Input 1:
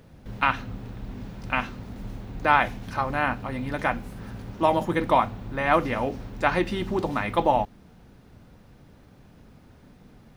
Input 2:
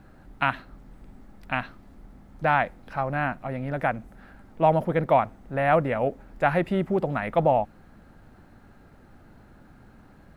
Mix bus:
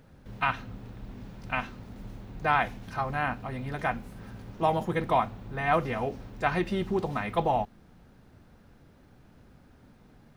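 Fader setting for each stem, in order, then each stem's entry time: −5.5, −10.5 decibels; 0.00, 0.00 seconds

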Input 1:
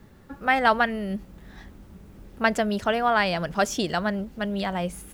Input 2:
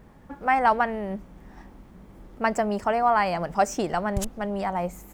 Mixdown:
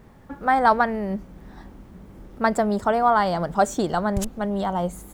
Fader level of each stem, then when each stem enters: −6.0, +1.0 decibels; 0.00, 0.00 seconds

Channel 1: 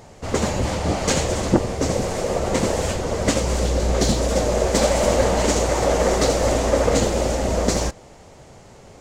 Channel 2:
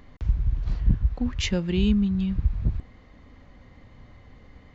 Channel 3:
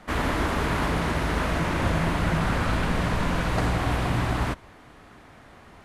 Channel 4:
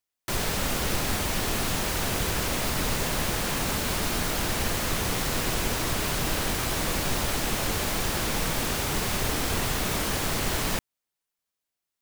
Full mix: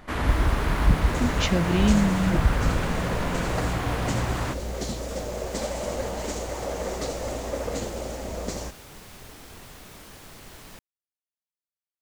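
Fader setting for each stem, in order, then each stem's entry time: −12.0, +0.5, −2.5, −18.0 decibels; 0.80, 0.00, 0.00, 0.00 seconds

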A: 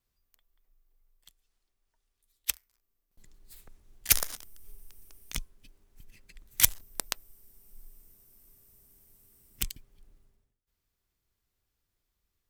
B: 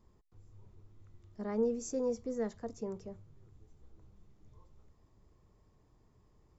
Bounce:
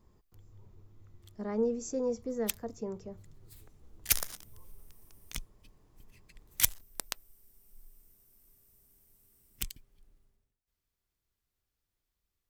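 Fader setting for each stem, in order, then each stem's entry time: −4.5, +1.5 decibels; 0.00, 0.00 seconds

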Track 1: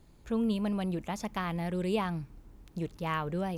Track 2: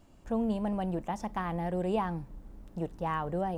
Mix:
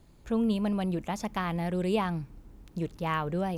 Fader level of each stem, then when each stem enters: +1.0, −12.5 decibels; 0.00, 0.00 seconds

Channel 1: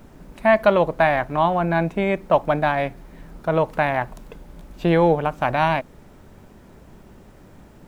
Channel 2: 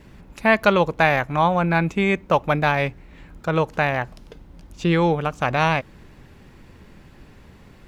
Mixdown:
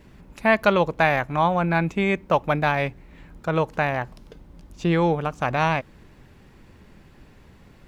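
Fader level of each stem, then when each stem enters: −16.0, −3.5 decibels; 0.00, 0.00 seconds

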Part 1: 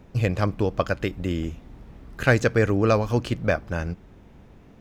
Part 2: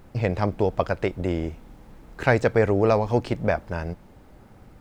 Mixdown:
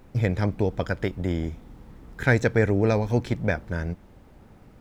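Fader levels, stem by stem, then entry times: −6.5, −3.5 decibels; 0.00, 0.00 seconds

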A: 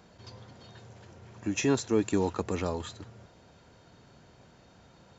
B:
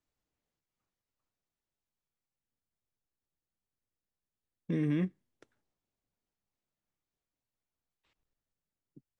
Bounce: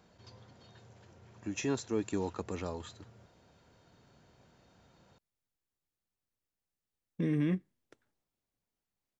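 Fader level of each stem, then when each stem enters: −7.0, 0.0 decibels; 0.00, 2.50 seconds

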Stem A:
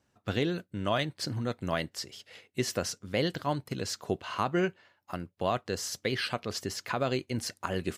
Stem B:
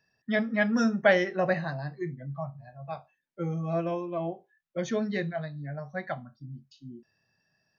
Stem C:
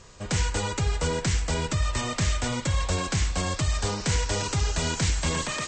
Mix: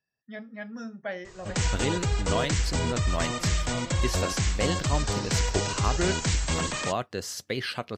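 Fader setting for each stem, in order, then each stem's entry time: 0.0, −13.5, −1.0 decibels; 1.45, 0.00, 1.25 seconds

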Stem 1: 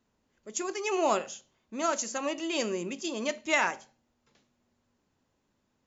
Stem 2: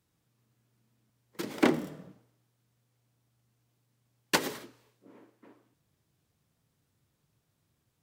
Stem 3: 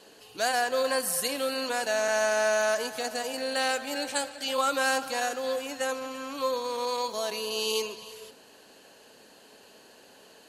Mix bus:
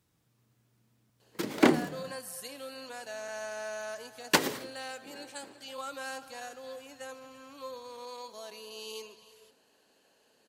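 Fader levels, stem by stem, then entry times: muted, +2.5 dB, −13.5 dB; muted, 0.00 s, 1.20 s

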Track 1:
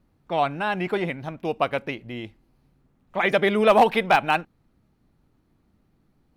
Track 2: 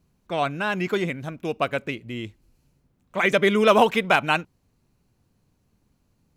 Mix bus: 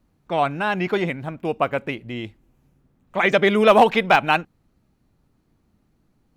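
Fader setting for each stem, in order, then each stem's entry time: −0.5, −6.0 decibels; 0.00, 0.00 seconds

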